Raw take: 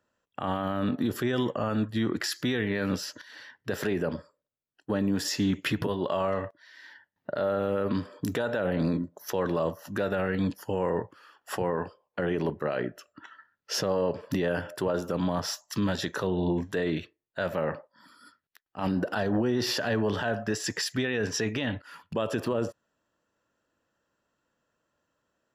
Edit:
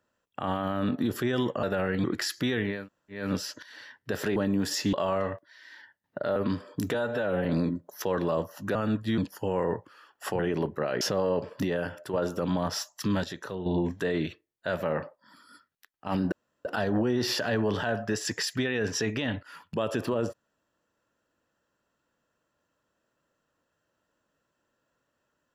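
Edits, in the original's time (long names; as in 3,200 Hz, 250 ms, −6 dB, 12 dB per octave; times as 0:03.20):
0:01.63–0:02.06: swap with 0:10.03–0:10.44
0:02.79: splice in room tone 0.43 s, crossfade 0.24 s
0:03.95–0:04.90: remove
0:05.47–0:06.05: remove
0:07.48–0:07.81: remove
0:08.39–0:08.73: time-stretch 1.5×
0:11.65–0:12.23: remove
0:12.85–0:13.73: remove
0:14.24–0:14.85: fade out, to −6 dB
0:15.96–0:16.38: clip gain −7 dB
0:19.04: splice in room tone 0.33 s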